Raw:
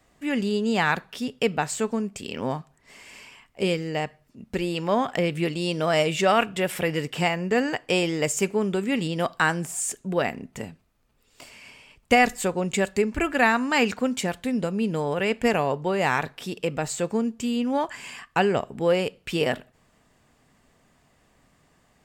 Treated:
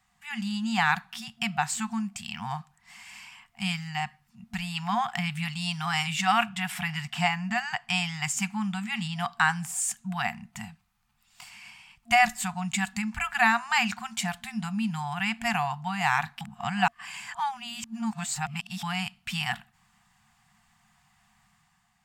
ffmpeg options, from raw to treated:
ffmpeg -i in.wav -filter_complex "[0:a]asettb=1/sr,asplit=3[link_01][link_02][link_03];[link_01]atrim=end=6.494[link_04];[link_02]atrim=start=6.49:end=9.56,asetpts=PTS-STARTPTS,afade=type=in:duration=0.004:curve=qsin,afade=type=out:start_time=3.066:duration=0.004:curve=qsin,highshelf=frequency=10000:gain=-7[link_05];[link_03]atrim=start=9.556[link_06];[link_04][link_05]acrossfade=duration=0.004:curve1=hsin:curve2=qsin[link_07];[link_07][link_06]acrossfade=duration=0.004:curve1=qsin:curve2=hsin,asplit=3[link_08][link_09][link_10];[link_08]atrim=end=16.412[link_11];[link_09]atrim=start=16.408:end=18.832,asetpts=PTS-STARTPTS,areverse[link_12];[link_10]atrim=start=18.828[link_13];[link_11][link_12]acrossfade=duration=0.004:curve1=hsin:curve2=hsin[link_14];[link_14][link_13]acrossfade=duration=0.004:curve1=hsin:curve2=hsin,afftfilt=real='re*(1-between(b*sr/4096,230,690))':imag='im*(1-between(b*sr/4096,230,690))':win_size=4096:overlap=0.75,lowshelf=frequency=120:gain=-8,dynaudnorm=framelen=110:gausssize=9:maxgain=5dB,volume=-5dB" out.wav

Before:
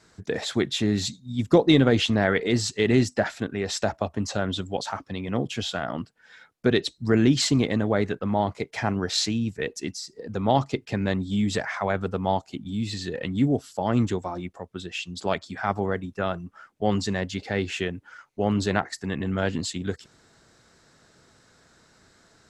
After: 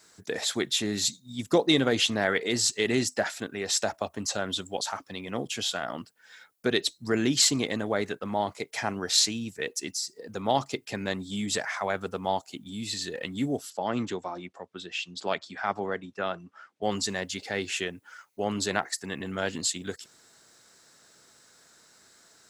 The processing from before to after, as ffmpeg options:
ffmpeg -i in.wav -filter_complex "[0:a]asettb=1/sr,asplit=3[link_01][link_02][link_03];[link_01]atrim=end=13.704[link_04];[link_02]atrim=start=13.7:end=16.83,asetpts=PTS-STARTPTS,afade=type=in:duration=0.004:curve=qsin,afade=type=out:start_time=3.126:duration=0.004:curve=qsin,highpass=110,lowpass=4600[link_05];[link_03]atrim=start=16.826[link_06];[link_04][link_05]acrossfade=duration=0.004:curve1=hsin:curve2=qsin[link_07];[link_07][link_06]acrossfade=duration=0.004:curve1=qsin:curve2=hsin,aemphasis=mode=production:type=bsi,volume=-2.5dB" out.wav

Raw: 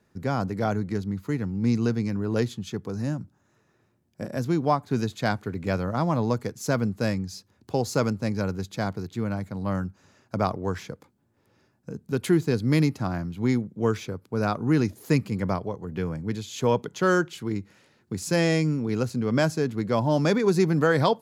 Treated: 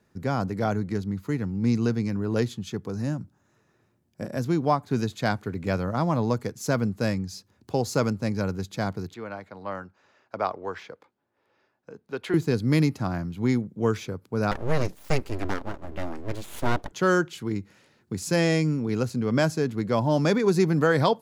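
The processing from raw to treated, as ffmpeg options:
ffmpeg -i in.wav -filter_complex "[0:a]asettb=1/sr,asplit=3[link_01][link_02][link_03];[link_01]atrim=end=9.144[link_04];[link_02]atrim=start=9.14:end=12.34,asetpts=PTS-STARTPTS,afade=type=in:duration=0.004:curve=qsin,afade=type=out:start_time=3.196:duration=0.004:curve=qsin,acrossover=split=380 4400:gain=0.141 1 0.141[link_05][link_06][link_07];[link_05][link_06][link_07]amix=inputs=3:normalize=0[link_08];[link_03]atrim=start=12.336[link_09];[link_04][link_08]acrossfade=duration=0.004:curve1=hsin:curve2=qsin[link_10];[link_10][link_09]acrossfade=duration=0.004:curve1=qsin:curve2=hsin,asettb=1/sr,asplit=3[link_11][link_12][link_13];[link_11]atrim=end=14.514[link_14];[link_12]atrim=start=14.51:end=16.92,asetpts=PTS-STARTPTS,afade=type=in:duration=0.004:curve=qsin,afade=type=out:start_time=2.406:duration=0.004:curve=qsin,aeval=exprs='abs(val(0))':channel_layout=same[link_15];[link_13]atrim=start=16.916[link_16];[link_14][link_15]acrossfade=duration=0.004:curve1=hsin:curve2=qsin[link_17];[link_17][link_16]acrossfade=duration=0.004:curve1=qsin:curve2=hsin" out.wav

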